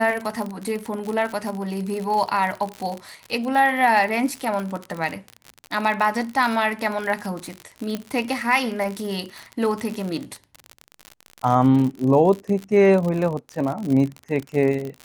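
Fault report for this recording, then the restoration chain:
crackle 56/s -26 dBFS
7.95 pop -13 dBFS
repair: de-click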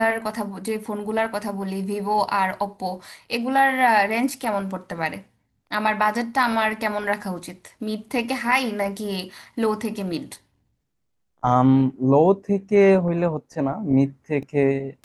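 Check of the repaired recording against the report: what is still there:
none

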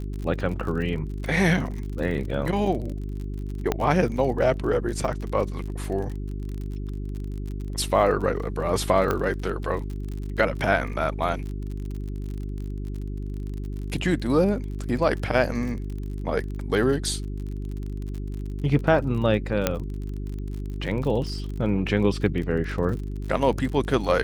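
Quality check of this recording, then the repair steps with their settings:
crackle 41/s -32 dBFS
hum 50 Hz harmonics 8 -31 dBFS
3.72 pop -9 dBFS
9.11 pop -11 dBFS
19.67 pop -5 dBFS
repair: de-click; de-hum 50 Hz, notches 8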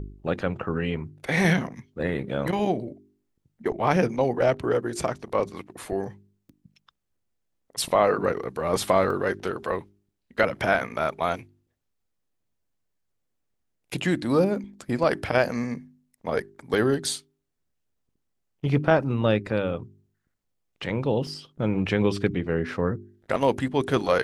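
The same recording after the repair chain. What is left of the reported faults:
9.11 pop

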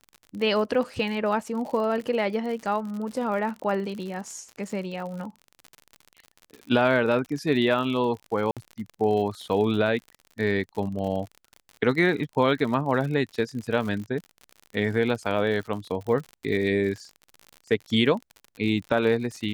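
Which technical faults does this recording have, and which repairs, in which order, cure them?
crackle 60/s -33 dBFS
8.51–8.57 gap 57 ms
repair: de-click; interpolate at 8.51, 57 ms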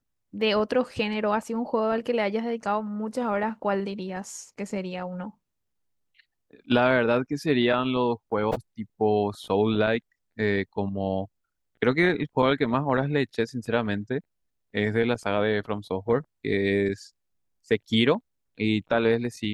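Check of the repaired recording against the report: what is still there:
none

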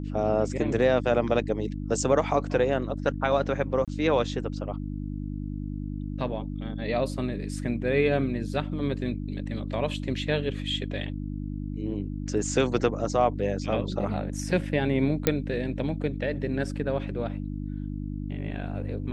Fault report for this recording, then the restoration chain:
hum 50 Hz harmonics 6 -33 dBFS
3.85–3.88 gap 27 ms
15.27 pop -6 dBFS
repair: de-click; de-hum 50 Hz, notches 6; interpolate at 3.85, 27 ms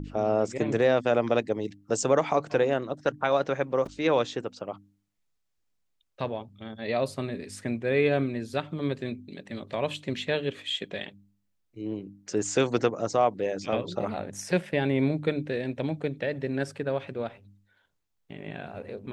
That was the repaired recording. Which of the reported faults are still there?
none

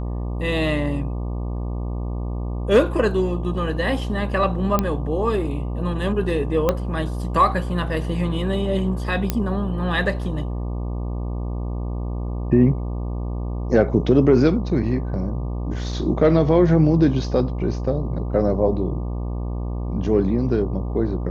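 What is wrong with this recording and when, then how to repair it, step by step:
buzz 60 Hz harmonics 20 -26 dBFS
4.79 pop -6 dBFS
6.69 pop -6 dBFS
9.3 pop -6 dBFS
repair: de-click; de-hum 60 Hz, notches 20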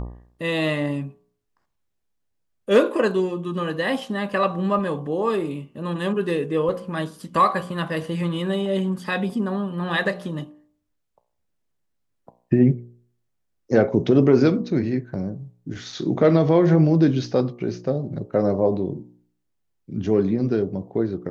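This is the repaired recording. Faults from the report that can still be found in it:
6.69 pop

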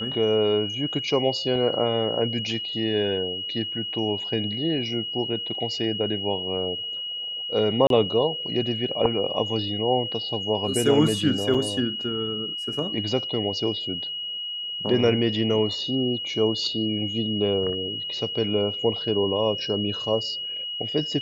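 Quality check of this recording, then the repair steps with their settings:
tone 2900 Hz -29 dBFS
7.87–7.9 gap 32 ms
11.54–11.55 gap 5.1 ms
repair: notch 2900 Hz, Q 30; interpolate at 7.87, 32 ms; interpolate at 11.54, 5.1 ms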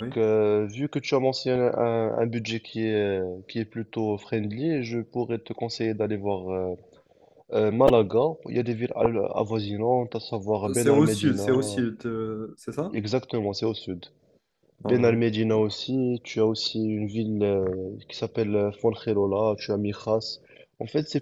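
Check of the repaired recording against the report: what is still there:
none

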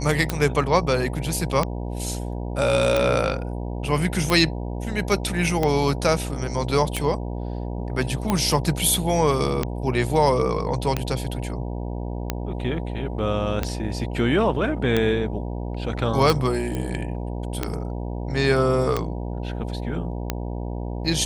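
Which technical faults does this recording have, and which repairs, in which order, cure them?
buzz 60 Hz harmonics 16 -29 dBFS
tick 45 rpm -8 dBFS
16.75 pop -16 dBFS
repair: de-click; de-hum 60 Hz, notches 16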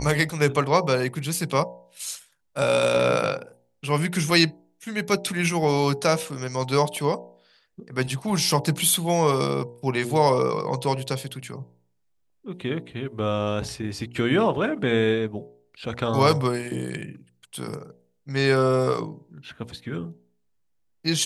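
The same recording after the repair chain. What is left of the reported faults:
none

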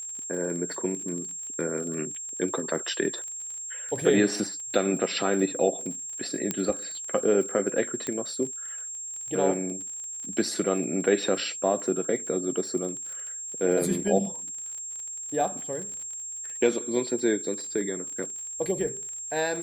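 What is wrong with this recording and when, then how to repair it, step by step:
crackle 37/s -35 dBFS
tone 7500 Hz -34 dBFS
6.51 pop -11 dBFS
8.07 pop -17 dBFS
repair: de-click; notch 7500 Hz, Q 30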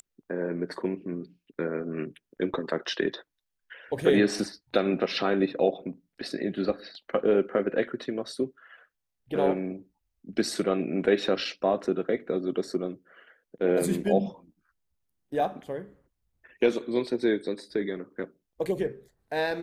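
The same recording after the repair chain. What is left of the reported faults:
none

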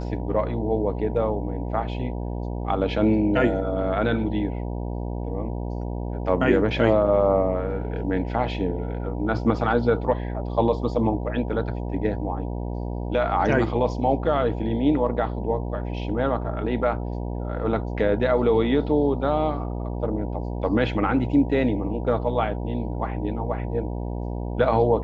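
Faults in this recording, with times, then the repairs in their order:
buzz 60 Hz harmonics 16 -29 dBFS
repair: de-hum 60 Hz, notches 16

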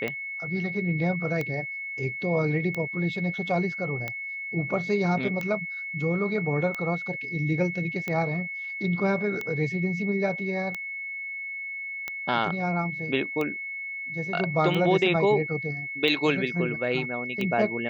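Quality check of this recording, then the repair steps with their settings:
tick 45 rpm -17 dBFS
tone 2200 Hz -32 dBFS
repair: de-click; notch 2200 Hz, Q 30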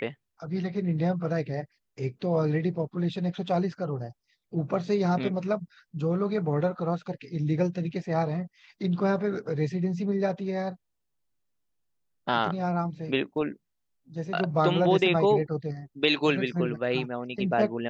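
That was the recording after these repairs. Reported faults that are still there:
none

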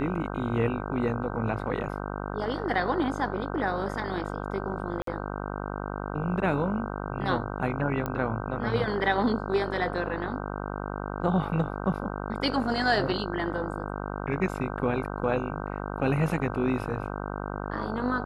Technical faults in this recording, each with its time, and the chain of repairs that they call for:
buzz 50 Hz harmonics 31 -34 dBFS
5.02–5.07 gap 53 ms
8.06 pop -17 dBFS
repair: de-click; de-hum 50 Hz, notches 31; interpolate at 5.02, 53 ms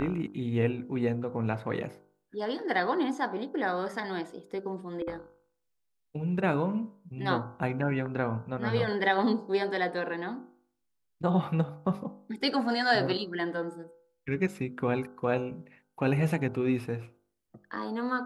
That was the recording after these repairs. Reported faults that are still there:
none

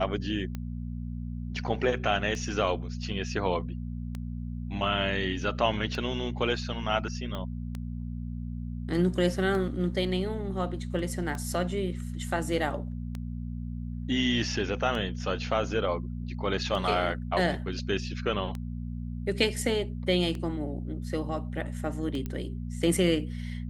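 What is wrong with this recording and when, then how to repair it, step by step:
hum 60 Hz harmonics 4 -35 dBFS
tick 33 1/3 rpm -22 dBFS
7.35 pop -22 dBFS
22.26 pop -21 dBFS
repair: de-click; de-hum 60 Hz, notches 4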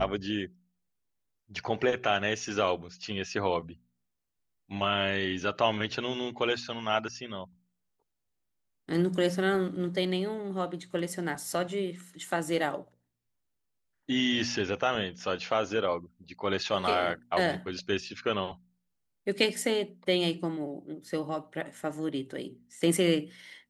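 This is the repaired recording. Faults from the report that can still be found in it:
7.35 pop
22.26 pop

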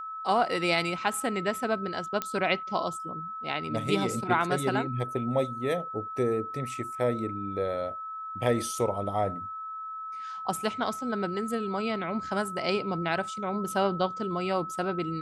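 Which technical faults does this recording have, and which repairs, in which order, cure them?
tone 1300 Hz -35 dBFS
2.22 pop -13 dBFS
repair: de-click; notch 1300 Hz, Q 30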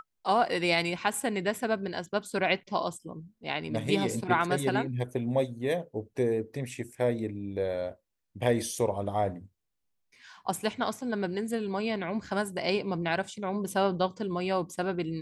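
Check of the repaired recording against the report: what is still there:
none

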